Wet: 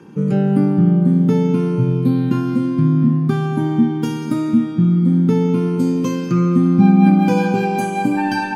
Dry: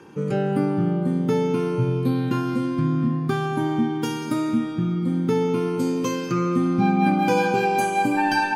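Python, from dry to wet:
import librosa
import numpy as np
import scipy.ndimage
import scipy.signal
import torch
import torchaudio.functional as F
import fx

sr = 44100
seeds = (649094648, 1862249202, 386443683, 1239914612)

y = fx.peak_eq(x, sr, hz=190.0, db=12.0, octaves=1.2)
y = y * 10.0 ** (-1.0 / 20.0)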